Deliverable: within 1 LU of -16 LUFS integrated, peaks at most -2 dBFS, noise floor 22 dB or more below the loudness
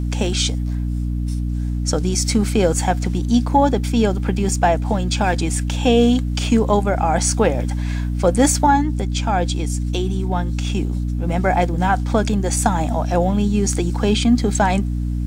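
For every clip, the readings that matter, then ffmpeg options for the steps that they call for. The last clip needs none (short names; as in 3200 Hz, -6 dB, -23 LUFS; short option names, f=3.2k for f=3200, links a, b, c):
hum 60 Hz; harmonics up to 300 Hz; hum level -19 dBFS; loudness -19.0 LUFS; peak -2.0 dBFS; loudness target -16.0 LUFS
-> -af "bandreject=f=60:t=h:w=6,bandreject=f=120:t=h:w=6,bandreject=f=180:t=h:w=6,bandreject=f=240:t=h:w=6,bandreject=f=300:t=h:w=6"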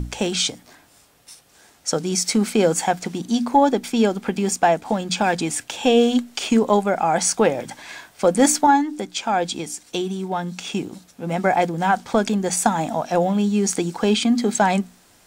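hum none; loudness -20.5 LUFS; peak -4.0 dBFS; loudness target -16.0 LUFS
-> -af "volume=4.5dB,alimiter=limit=-2dB:level=0:latency=1"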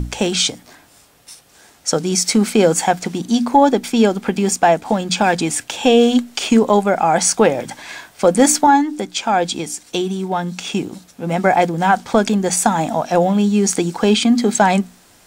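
loudness -16.5 LUFS; peak -2.0 dBFS; noise floor -50 dBFS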